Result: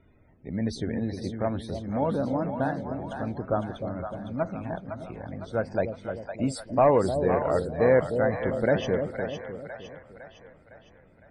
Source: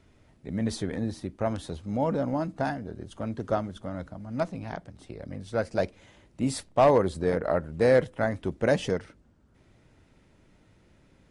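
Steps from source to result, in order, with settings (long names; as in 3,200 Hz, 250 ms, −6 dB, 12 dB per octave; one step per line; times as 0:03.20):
spectral peaks only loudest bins 64
echo with a time of its own for lows and highs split 640 Hz, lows 304 ms, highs 508 ms, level −6.5 dB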